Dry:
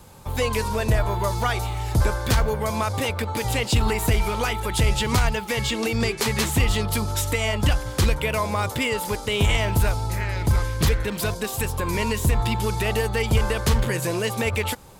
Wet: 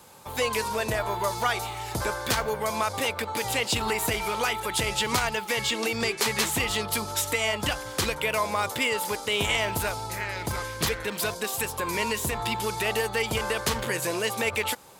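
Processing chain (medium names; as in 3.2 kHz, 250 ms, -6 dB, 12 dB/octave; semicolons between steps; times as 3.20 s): high-pass 460 Hz 6 dB/octave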